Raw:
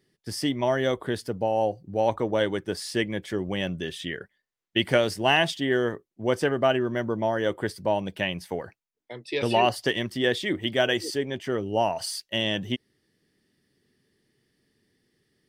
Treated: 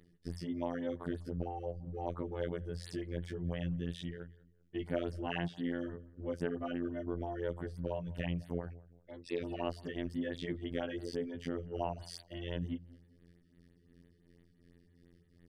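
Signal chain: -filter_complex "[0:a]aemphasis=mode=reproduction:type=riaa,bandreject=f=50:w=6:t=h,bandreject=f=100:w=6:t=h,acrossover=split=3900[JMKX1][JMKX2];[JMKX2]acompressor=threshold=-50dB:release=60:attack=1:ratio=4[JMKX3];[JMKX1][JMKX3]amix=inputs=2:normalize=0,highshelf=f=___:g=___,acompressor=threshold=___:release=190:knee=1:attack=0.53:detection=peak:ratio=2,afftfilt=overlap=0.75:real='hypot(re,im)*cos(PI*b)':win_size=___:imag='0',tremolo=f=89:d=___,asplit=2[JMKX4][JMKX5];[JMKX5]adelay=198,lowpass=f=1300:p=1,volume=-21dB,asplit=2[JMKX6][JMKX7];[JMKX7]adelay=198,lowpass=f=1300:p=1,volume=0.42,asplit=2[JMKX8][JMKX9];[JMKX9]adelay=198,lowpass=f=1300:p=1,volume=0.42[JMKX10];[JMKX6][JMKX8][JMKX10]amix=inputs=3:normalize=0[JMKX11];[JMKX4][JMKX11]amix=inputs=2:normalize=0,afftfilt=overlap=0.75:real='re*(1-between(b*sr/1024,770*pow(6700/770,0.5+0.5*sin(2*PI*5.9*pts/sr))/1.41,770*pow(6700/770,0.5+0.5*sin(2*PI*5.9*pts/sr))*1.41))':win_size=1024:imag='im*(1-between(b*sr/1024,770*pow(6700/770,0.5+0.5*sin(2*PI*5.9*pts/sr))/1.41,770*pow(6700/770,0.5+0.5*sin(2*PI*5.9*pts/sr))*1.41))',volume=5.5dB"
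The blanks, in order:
6800, 9.5, -42dB, 2048, 0.667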